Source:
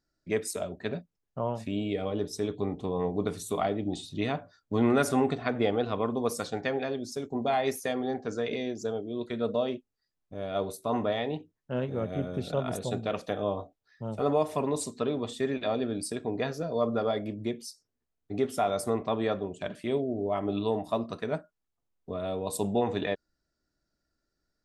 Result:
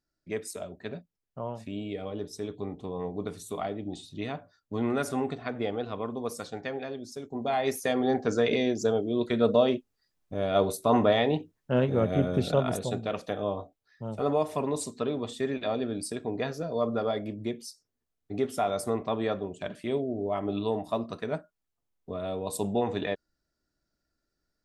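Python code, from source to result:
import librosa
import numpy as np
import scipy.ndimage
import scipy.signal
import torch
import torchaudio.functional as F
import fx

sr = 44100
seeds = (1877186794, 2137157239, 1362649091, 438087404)

y = fx.gain(x, sr, db=fx.line((7.24, -4.5), (8.16, 6.5), (12.45, 6.5), (13.0, -0.5)))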